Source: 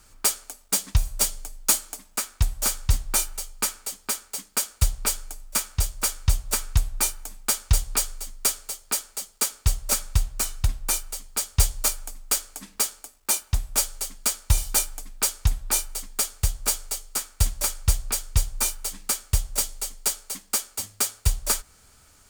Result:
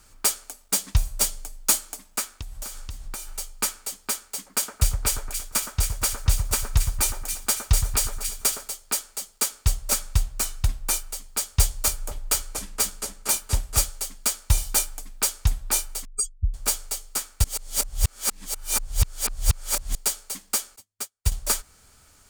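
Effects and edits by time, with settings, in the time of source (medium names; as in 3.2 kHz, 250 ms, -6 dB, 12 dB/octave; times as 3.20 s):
2.23–3.32 s: compression 16:1, threshold -30 dBFS
4.35–8.68 s: two-band feedback delay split 1.8 kHz, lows 115 ms, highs 276 ms, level -7 dB
11.64–13.90 s: delay with an opening low-pass 236 ms, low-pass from 750 Hz, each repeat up 2 oct, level -3 dB
16.05–16.54 s: spectral contrast enhancement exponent 3.7
17.44–19.95 s: reverse
20.76–21.32 s: upward expansion 2.5:1, over -41 dBFS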